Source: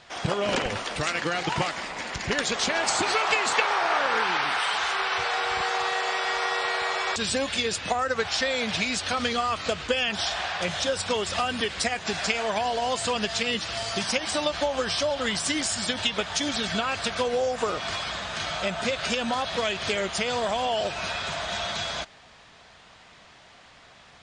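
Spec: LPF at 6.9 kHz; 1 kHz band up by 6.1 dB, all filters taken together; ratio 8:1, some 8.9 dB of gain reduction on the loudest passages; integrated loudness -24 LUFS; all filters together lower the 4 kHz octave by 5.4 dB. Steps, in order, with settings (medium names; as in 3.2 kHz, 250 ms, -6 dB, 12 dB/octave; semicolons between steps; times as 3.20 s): low-pass 6.9 kHz; peaking EQ 1 kHz +8.5 dB; peaking EQ 4 kHz -7.5 dB; compression 8:1, threshold -25 dBFS; trim +5 dB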